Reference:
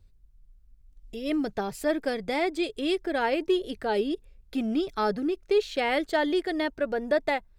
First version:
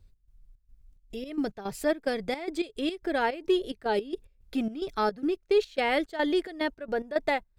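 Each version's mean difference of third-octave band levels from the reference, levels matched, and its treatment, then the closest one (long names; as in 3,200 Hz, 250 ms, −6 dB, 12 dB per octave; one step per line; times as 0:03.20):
3.5 dB: gate pattern "x.xx.xx.x." 109 BPM −12 dB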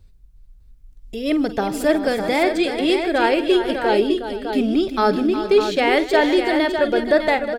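5.5 dB: multi-tap delay 47/156/362/460/604 ms −14/−18/−10.5/−18.5/−7.5 dB
level +8 dB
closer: first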